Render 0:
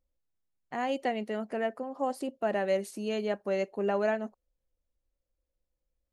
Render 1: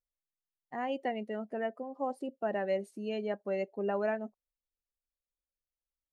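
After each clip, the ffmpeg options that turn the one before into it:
ffmpeg -i in.wav -af "afftdn=noise_reduction=14:noise_floor=-39,volume=-3.5dB" out.wav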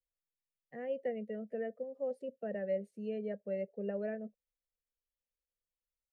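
ffmpeg -i in.wav -filter_complex "[0:a]acrossover=split=120|450|1900[link_01][link_02][link_03][link_04];[link_04]acompressor=threshold=-59dB:ratio=6[link_05];[link_01][link_02][link_03][link_05]amix=inputs=4:normalize=0,firequalizer=gain_entry='entry(210,0);entry(320,-17);entry(480,6);entry(910,-26);entry(1800,-3);entry(4600,-9)':delay=0.05:min_phase=1,volume=-1.5dB" out.wav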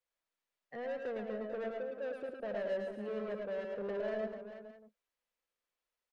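ffmpeg -i in.wav -filter_complex "[0:a]asplit=2[link_01][link_02];[link_02]highpass=frequency=720:poles=1,volume=23dB,asoftclip=type=tanh:threshold=-25.5dB[link_03];[link_01][link_03]amix=inputs=2:normalize=0,lowpass=frequency=1600:poles=1,volume=-6dB,aecho=1:1:107|110|187|242|441|614:0.531|0.501|0.133|0.224|0.299|0.141,volume=-6.5dB" out.wav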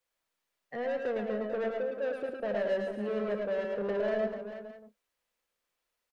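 ffmpeg -i in.wav -filter_complex "[0:a]asplit=2[link_01][link_02];[link_02]adelay=29,volume=-14dB[link_03];[link_01][link_03]amix=inputs=2:normalize=0,volume=6.5dB" out.wav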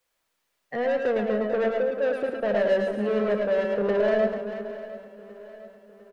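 ffmpeg -i in.wav -af "aecho=1:1:704|1408|2112|2816:0.141|0.072|0.0367|0.0187,volume=8dB" out.wav

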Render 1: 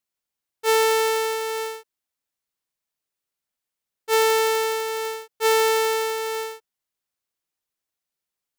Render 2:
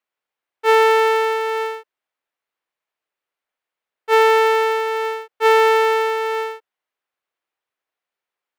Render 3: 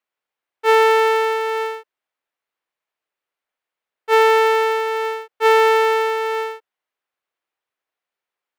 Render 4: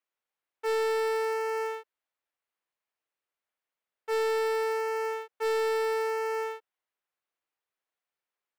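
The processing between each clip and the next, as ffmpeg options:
ffmpeg -i in.wav -filter_complex "[0:a]acrossover=split=350 3000:gain=0.158 1 0.141[link_01][link_02][link_03];[link_01][link_02][link_03]amix=inputs=3:normalize=0,volume=7.5dB" out.wav
ffmpeg -i in.wav -af anull out.wav
ffmpeg -i in.wav -af "asoftclip=type=tanh:threshold=-19dB,volume=-6dB" out.wav

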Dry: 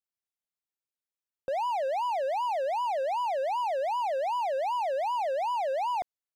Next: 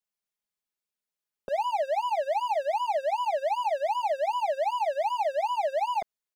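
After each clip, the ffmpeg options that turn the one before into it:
ffmpeg -i in.wav -af "aecho=1:1:4.8:0.87" out.wav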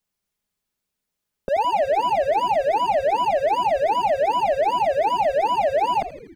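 ffmpeg -i in.wav -filter_complex "[0:a]lowshelf=frequency=280:gain=11,asplit=2[link_01][link_02];[link_02]aeval=exprs='0.126*sin(PI/2*1.58*val(0)/0.126)':channel_layout=same,volume=-5dB[link_03];[link_01][link_03]amix=inputs=2:normalize=0,asplit=8[link_04][link_05][link_06][link_07][link_08][link_09][link_10][link_11];[link_05]adelay=82,afreqshift=-130,volume=-14.5dB[link_12];[link_06]adelay=164,afreqshift=-260,volume=-18.7dB[link_13];[link_07]adelay=246,afreqshift=-390,volume=-22.8dB[link_14];[link_08]adelay=328,afreqshift=-520,volume=-27dB[link_15];[link_09]adelay=410,afreqshift=-650,volume=-31.1dB[link_16];[link_10]adelay=492,afreqshift=-780,volume=-35.3dB[link_17];[link_11]adelay=574,afreqshift=-910,volume=-39.4dB[link_18];[link_04][link_12][link_13][link_14][link_15][link_16][link_17][link_18]amix=inputs=8:normalize=0" out.wav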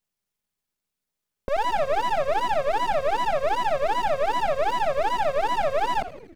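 ffmpeg -i in.wav -af "aeval=exprs='if(lt(val(0),0),0.251*val(0),val(0))':channel_layout=same" out.wav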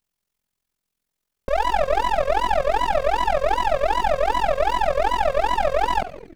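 ffmpeg -i in.wav -af "tremolo=f=43:d=0.788,volume=6.5dB" out.wav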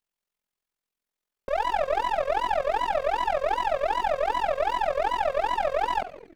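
ffmpeg -i in.wav -af "bass=frequency=250:gain=-9,treble=frequency=4000:gain=-4,volume=-4.5dB" out.wav

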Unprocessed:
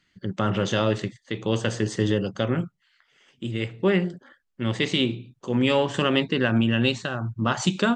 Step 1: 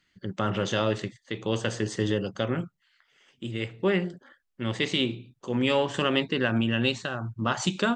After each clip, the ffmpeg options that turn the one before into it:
ffmpeg -i in.wav -af "equalizer=frequency=150:width=0.62:gain=-3,volume=-2dB" out.wav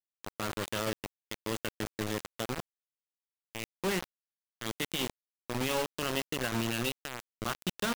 ffmpeg -i in.wav -af "acrusher=bits=3:mix=0:aa=0.000001,volume=-8.5dB" out.wav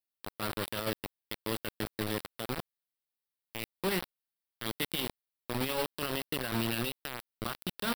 ffmpeg -i in.wav -af "alimiter=limit=-24dB:level=0:latency=1:release=32,aexciter=amount=1:drive=1.7:freq=3600" out.wav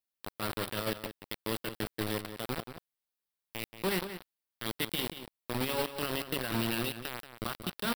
ffmpeg -i in.wav -filter_complex "[0:a]asplit=2[link_01][link_02];[link_02]adelay=180.8,volume=-10dB,highshelf=frequency=4000:gain=-4.07[link_03];[link_01][link_03]amix=inputs=2:normalize=0" out.wav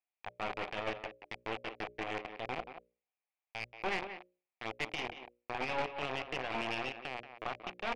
ffmpeg -i in.wav -af "highpass=430,equalizer=frequency=750:width_type=q:width=4:gain=9,equalizer=frequency=1500:width_type=q:width=4:gain=-6,equalizer=frequency=2400:width_type=q:width=4:gain=9,lowpass=frequency=2600:width=0.5412,lowpass=frequency=2600:width=1.3066,aeval=exprs='(tanh(28.2*val(0)+0.7)-tanh(0.7))/28.2':channel_layout=same,bandreject=frequency=60:width_type=h:width=6,bandreject=frequency=120:width_type=h:width=6,bandreject=frequency=180:width_type=h:width=6,bandreject=frequency=240:width_type=h:width=6,bandreject=frequency=300:width_type=h:width=6,bandreject=frequency=360:width_type=h:width=6,bandreject=frequency=420:width_type=h:width=6,bandreject=frequency=480:width_type=h:width=6,bandreject=frequency=540:width_type=h:width=6,bandreject=frequency=600:width_type=h:width=6,volume=2.5dB" out.wav

